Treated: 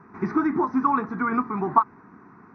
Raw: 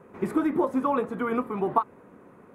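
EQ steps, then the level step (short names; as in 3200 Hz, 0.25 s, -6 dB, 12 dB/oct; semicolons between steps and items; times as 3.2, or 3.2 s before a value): brick-wall FIR low-pass 6200 Hz; low shelf 83 Hz -10 dB; fixed phaser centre 1300 Hz, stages 4; +7.0 dB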